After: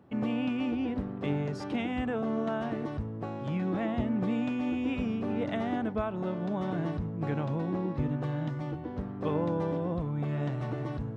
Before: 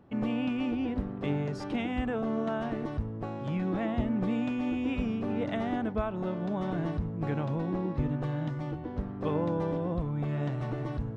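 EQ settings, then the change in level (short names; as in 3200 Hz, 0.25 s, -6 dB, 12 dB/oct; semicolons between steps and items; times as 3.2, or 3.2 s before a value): HPF 72 Hz; 0.0 dB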